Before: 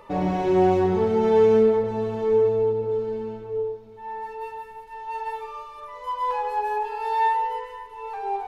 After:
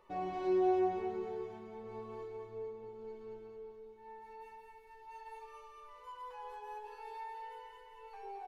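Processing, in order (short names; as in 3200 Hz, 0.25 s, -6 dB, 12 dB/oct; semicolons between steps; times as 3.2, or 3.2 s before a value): compressor 6:1, threshold -25 dBFS, peak gain reduction 10.5 dB; resonator 370 Hz, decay 0.27 s, harmonics all, mix 90%; feedback echo 0.219 s, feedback 45%, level -5 dB; gain -1.5 dB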